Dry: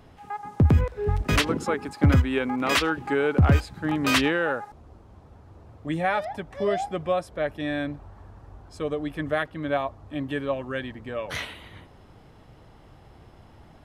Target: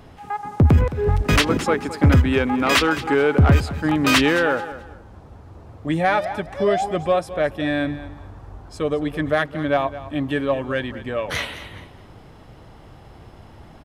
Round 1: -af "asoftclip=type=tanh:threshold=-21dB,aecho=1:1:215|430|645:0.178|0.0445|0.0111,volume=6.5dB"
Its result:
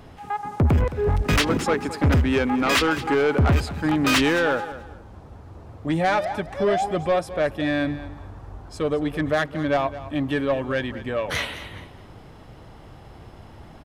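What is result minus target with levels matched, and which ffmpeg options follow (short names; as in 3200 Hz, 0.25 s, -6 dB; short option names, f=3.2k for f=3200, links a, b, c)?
soft clip: distortion +9 dB
-af "asoftclip=type=tanh:threshold=-13.5dB,aecho=1:1:215|430|645:0.178|0.0445|0.0111,volume=6.5dB"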